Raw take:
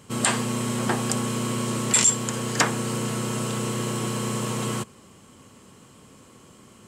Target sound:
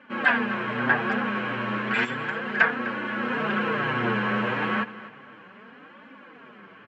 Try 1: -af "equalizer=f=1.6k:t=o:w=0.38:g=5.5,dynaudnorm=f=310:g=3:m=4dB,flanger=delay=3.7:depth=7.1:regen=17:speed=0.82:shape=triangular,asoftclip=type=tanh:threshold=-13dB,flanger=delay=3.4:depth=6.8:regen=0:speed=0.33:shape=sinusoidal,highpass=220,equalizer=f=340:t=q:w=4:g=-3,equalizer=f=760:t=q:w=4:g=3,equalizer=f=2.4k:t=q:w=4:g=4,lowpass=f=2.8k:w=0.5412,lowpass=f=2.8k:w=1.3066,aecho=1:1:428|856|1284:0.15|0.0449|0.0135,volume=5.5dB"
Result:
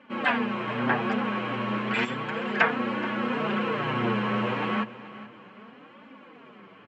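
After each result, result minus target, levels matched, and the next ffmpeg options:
echo 0.175 s late; 2000 Hz band -3.5 dB
-af "equalizer=f=1.6k:t=o:w=0.38:g=5.5,dynaudnorm=f=310:g=3:m=4dB,flanger=delay=3.7:depth=7.1:regen=17:speed=0.82:shape=triangular,asoftclip=type=tanh:threshold=-13dB,flanger=delay=3.4:depth=6.8:regen=0:speed=0.33:shape=sinusoidal,highpass=220,equalizer=f=340:t=q:w=4:g=-3,equalizer=f=760:t=q:w=4:g=3,equalizer=f=2.4k:t=q:w=4:g=4,lowpass=f=2.8k:w=0.5412,lowpass=f=2.8k:w=1.3066,aecho=1:1:253|506|759:0.15|0.0449|0.0135,volume=5.5dB"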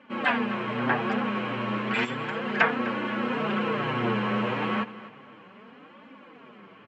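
2000 Hz band -3.0 dB
-af "equalizer=f=1.6k:t=o:w=0.38:g=15,dynaudnorm=f=310:g=3:m=4dB,flanger=delay=3.7:depth=7.1:regen=17:speed=0.82:shape=triangular,asoftclip=type=tanh:threshold=-13dB,flanger=delay=3.4:depth=6.8:regen=0:speed=0.33:shape=sinusoidal,highpass=220,equalizer=f=340:t=q:w=4:g=-3,equalizer=f=760:t=q:w=4:g=3,equalizer=f=2.4k:t=q:w=4:g=4,lowpass=f=2.8k:w=0.5412,lowpass=f=2.8k:w=1.3066,aecho=1:1:253|506|759:0.15|0.0449|0.0135,volume=5.5dB"

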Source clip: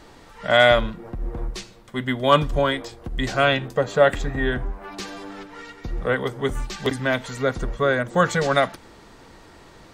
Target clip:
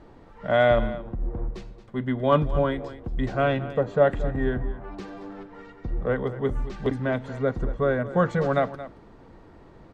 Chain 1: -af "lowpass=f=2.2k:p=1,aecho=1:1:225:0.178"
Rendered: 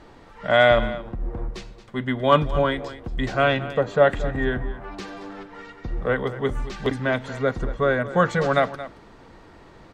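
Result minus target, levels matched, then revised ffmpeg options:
2000 Hz band +4.0 dB
-af "lowpass=f=620:p=1,aecho=1:1:225:0.178"

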